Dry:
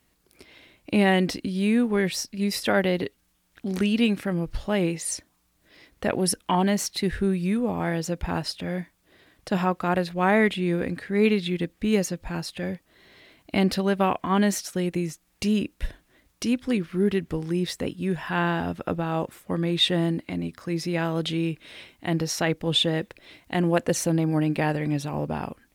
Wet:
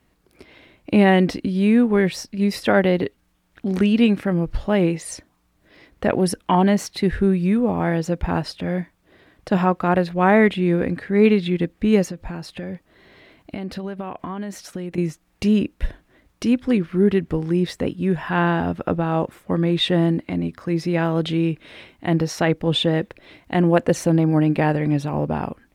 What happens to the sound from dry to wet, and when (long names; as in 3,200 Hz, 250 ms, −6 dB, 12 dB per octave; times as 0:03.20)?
0:12.08–0:14.98: downward compressor 10 to 1, threshold −31 dBFS
whole clip: high-shelf EQ 3,200 Hz −11.5 dB; level +6 dB